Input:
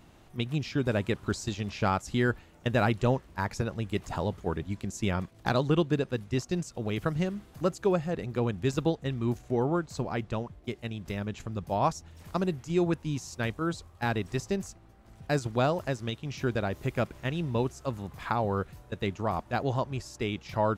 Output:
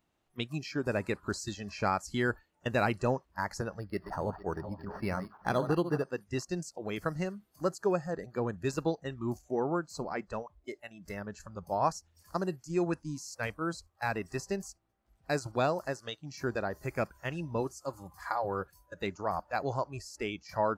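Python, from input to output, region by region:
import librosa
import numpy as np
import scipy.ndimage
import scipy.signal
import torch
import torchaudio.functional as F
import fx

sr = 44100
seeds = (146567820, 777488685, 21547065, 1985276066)

y = fx.chain(x, sr, fx.reverse_delay_fb(ms=227, feedback_pct=53, wet_db=-9.5),
    fx.resample_linear(factor=6), at=(3.79, 6.03))
y = fx.chain(y, sr, fx.high_shelf(hz=4500.0, db=4.0),
    fx.hum_notches(base_hz=60, count=2),
    fx.notch_comb(f0_hz=220.0), at=(17.6, 18.94))
y = fx.noise_reduce_blind(y, sr, reduce_db=18)
y = fx.low_shelf(y, sr, hz=240.0, db=-7.5)
y = y * librosa.db_to_amplitude(-1.0)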